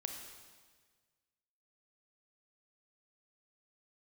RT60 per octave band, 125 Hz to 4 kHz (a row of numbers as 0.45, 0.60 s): 1.8, 1.6, 1.6, 1.5, 1.5, 1.4 s